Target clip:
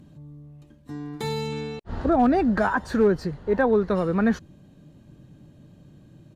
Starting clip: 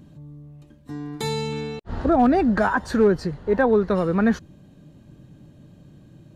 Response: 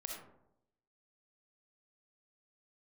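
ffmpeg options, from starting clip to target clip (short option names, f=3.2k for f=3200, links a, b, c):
-filter_complex "[0:a]acrossover=split=3200[a][b];[b]asoftclip=type=hard:threshold=-39dB[c];[a][c]amix=inputs=2:normalize=0,aresample=32000,aresample=44100,volume=-2dB"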